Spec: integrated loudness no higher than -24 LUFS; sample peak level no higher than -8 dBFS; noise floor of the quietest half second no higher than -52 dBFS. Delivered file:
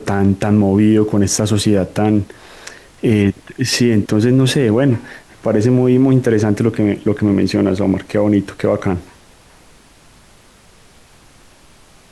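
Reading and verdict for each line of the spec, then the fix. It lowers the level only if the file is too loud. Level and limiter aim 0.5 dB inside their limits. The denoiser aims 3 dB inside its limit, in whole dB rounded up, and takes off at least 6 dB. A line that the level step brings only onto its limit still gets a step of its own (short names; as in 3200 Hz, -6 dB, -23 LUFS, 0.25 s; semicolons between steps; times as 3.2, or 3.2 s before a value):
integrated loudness -15.0 LUFS: fail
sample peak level -3.5 dBFS: fail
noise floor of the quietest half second -46 dBFS: fail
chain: gain -9.5 dB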